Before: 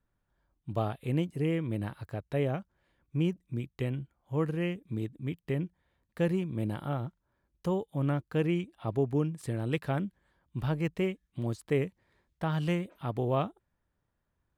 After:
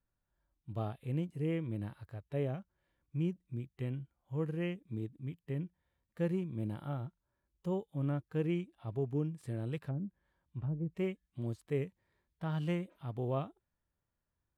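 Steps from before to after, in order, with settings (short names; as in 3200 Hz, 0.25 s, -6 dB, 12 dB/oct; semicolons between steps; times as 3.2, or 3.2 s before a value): 9.88–10.9 treble ducked by the level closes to 340 Hz, closed at -26 dBFS; harmonic-percussive split percussive -9 dB; gain -4.5 dB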